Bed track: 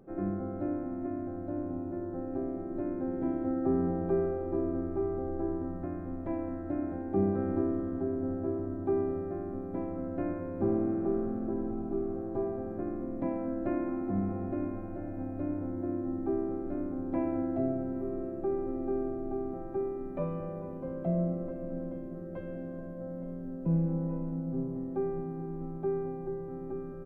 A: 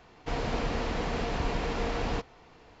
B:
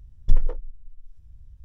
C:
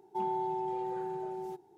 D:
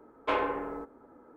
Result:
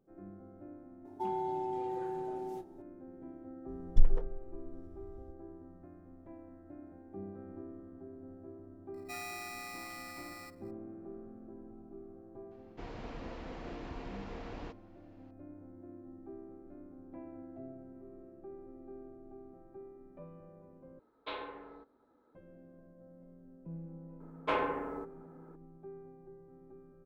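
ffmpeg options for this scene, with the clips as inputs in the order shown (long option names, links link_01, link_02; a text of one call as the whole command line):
ffmpeg -i bed.wav -i cue0.wav -i cue1.wav -i cue2.wav -i cue3.wav -filter_complex "[3:a]asplit=2[link_01][link_02];[4:a]asplit=2[link_03][link_04];[0:a]volume=-17dB[link_05];[link_01]asplit=2[link_06][link_07];[link_07]adelay=30,volume=-11.5dB[link_08];[link_06][link_08]amix=inputs=2:normalize=0[link_09];[link_02]aeval=exprs='val(0)*sgn(sin(2*PI*1600*n/s))':channel_layout=same[link_10];[1:a]aemphasis=mode=reproduction:type=cd[link_11];[link_03]lowpass=frequency=3900:width_type=q:width=9.6[link_12];[link_05]asplit=2[link_13][link_14];[link_13]atrim=end=20.994[link_15];[link_12]atrim=end=1.36,asetpts=PTS-STARTPTS,volume=-14.5dB[link_16];[link_14]atrim=start=22.346[link_17];[link_09]atrim=end=1.77,asetpts=PTS-STARTPTS,volume=-1.5dB,afade=type=in:duration=0.004:curve=hsin,afade=type=out:start_time=1.766:duration=0.004:curve=hsin,adelay=1050[link_18];[2:a]atrim=end=1.64,asetpts=PTS-STARTPTS,volume=-6dB,afade=type=in:duration=0.004:curve=hsin,afade=type=out:start_time=1.636:duration=0.004:curve=hsin,adelay=3680[link_19];[link_10]atrim=end=1.77,asetpts=PTS-STARTPTS,volume=-10.5dB,afade=type=in:duration=0.004:curve=hsin,afade=type=out:start_time=1.766:duration=0.004:curve=hsin,adelay=8940[link_20];[link_11]atrim=end=2.8,asetpts=PTS-STARTPTS,volume=-14.5dB,afade=type=in:duration=0.004:curve=hsin,afade=type=out:start_time=2.796:duration=0.004:curve=hsin,adelay=12510[link_21];[link_04]atrim=end=1.36,asetpts=PTS-STARTPTS,volume=-3dB,afade=type=in:duration=0.004:curve=hsin,afade=type=out:start_time=1.356:duration=0.004:curve=hsin,adelay=24200[link_22];[link_15][link_16]acrossfade=duration=0.004:curve1=hsin:curve2=hsin[link_23];[link_23][link_17]acrossfade=duration=0.004:curve1=hsin:curve2=hsin[link_24];[link_24][link_18][link_19][link_20][link_21][link_22]amix=inputs=6:normalize=0" out.wav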